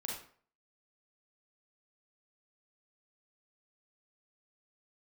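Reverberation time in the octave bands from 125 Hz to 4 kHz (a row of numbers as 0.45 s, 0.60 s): 0.50 s, 0.45 s, 0.50 s, 0.50 s, 0.45 s, 0.35 s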